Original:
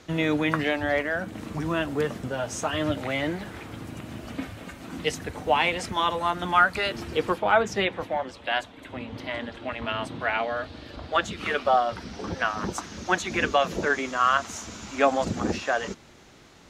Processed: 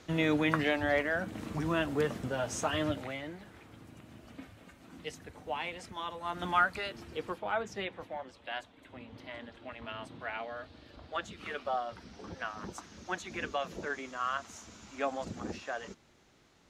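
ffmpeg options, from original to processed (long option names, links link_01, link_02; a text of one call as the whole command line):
ffmpeg -i in.wav -af "volume=4.5dB,afade=type=out:start_time=2.74:duration=0.48:silence=0.298538,afade=type=in:start_time=6.22:duration=0.23:silence=0.375837,afade=type=out:start_time=6.45:duration=0.49:silence=0.473151" out.wav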